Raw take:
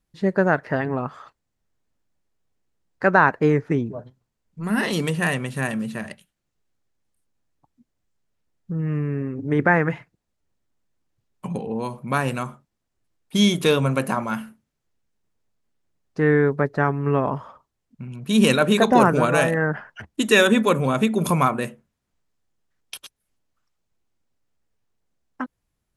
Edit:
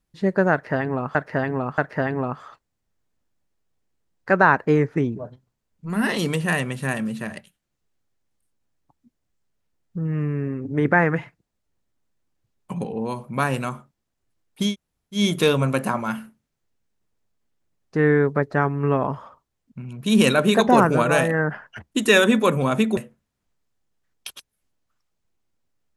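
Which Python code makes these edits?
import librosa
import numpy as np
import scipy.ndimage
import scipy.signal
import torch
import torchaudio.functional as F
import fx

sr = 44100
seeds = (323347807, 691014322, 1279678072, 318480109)

y = fx.edit(x, sr, fx.repeat(start_s=0.52, length_s=0.63, count=3),
    fx.insert_room_tone(at_s=13.42, length_s=0.51, crossfade_s=0.16),
    fx.cut(start_s=21.2, length_s=0.44), tone=tone)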